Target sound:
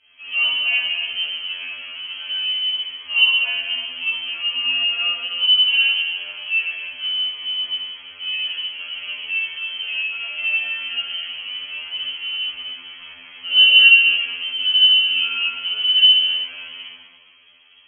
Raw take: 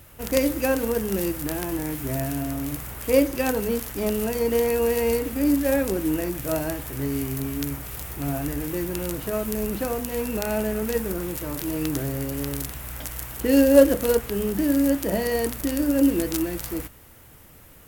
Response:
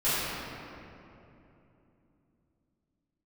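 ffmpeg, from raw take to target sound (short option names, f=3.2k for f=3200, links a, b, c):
-filter_complex "[0:a]lowpass=f=2.8k:t=q:w=0.5098,lowpass=f=2.8k:t=q:w=0.6013,lowpass=f=2.8k:t=q:w=0.9,lowpass=f=2.8k:t=q:w=2.563,afreqshift=-3300,equalizer=f=100:t=o:w=0.67:g=8,equalizer=f=250:t=o:w=0.67:g=7,equalizer=f=1k:t=o:w=0.67:g=3,equalizer=f=2.5k:t=o:w=0.67:g=12[a];[1:a]atrim=start_sample=2205,asetrate=83790,aresample=44100[b];[a][b]afir=irnorm=-1:irlink=0,afftfilt=real='re*2*eq(mod(b,4),0)':imag='im*2*eq(mod(b,4),0)':win_size=2048:overlap=0.75,volume=-13.5dB"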